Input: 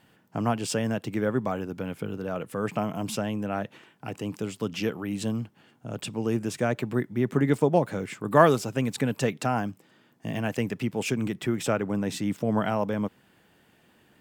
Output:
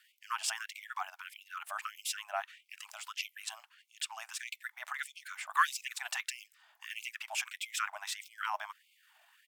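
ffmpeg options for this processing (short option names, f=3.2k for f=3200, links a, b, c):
-filter_complex "[0:a]atempo=1.5,acrossover=split=760|2100[a][b][c];[a]acompressor=threshold=-35dB:ratio=6[d];[d][b][c]amix=inputs=3:normalize=0,equalizer=f=490:t=o:w=0.77:g=2.5,afftfilt=real='re*gte(b*sr/1024,600*pow(2100/600,0.5+0.5*sin(2*PI*1.6*pts/sr)))':imag='im*gte(b*sr/1024,600*pow(2100/600,0.5+0.5*sin(2*PI*1.6*pts/sr)))':win_size=1024:overlap=0.75"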